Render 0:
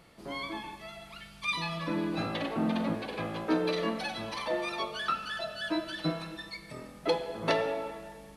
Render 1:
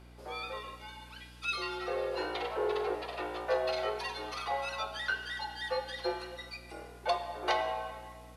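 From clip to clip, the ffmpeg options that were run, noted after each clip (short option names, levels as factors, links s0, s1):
-af "bandreject=f=50:t=h:w=6,bandreject=f=100:t=h:w=6,bandreject=f=150:t=h:w=6,bandreject=f=200:t=h:w=6,afreqshift=200,aeval=exprs='val(0)+0.00316*(sin(2*PI*60*n/s)+sin(2*PI*2*60*n/s)/2+sin(2*PI*3*60*n/s)/3+sin(2*PI*4*60*n/s)/4+sin(2*PI*5*60*n/s)/5)':c=same,volume=0.75"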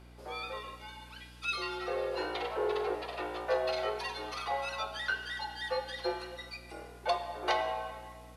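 -af anull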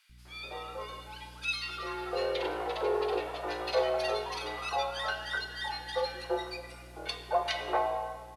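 -filter_complex "[0:a]acrossover=split=110|1000|4700[s0][s1][s2][s3];[s0]acrusher=bits=3:mode=log:mix=0:aa=0.000001[s4];[s4][s1][s2][s3]amix=inputs=4:normalize=0,acrossover=split=220|1600[s5][s6][s7];[s5]adelay=90[s8];[s6]adelay=250[s9];[s8][s9][s7]amix=inputs=3:normalize=0,dynaudnorm=f=120:g=11:m=1.41"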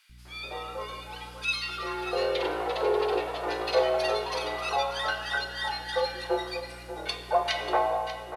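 -af "aecho=1:1:589:0.251,volume=1.58"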